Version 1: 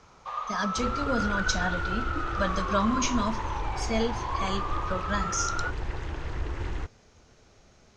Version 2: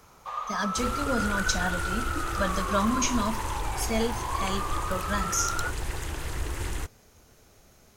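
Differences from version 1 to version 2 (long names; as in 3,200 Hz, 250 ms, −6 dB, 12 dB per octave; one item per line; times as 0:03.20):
second sound: remove low-pass filter 1,800 Hz 6 dB per octave
master: remove low-pass filter 6,300 Hz 24 dB per octave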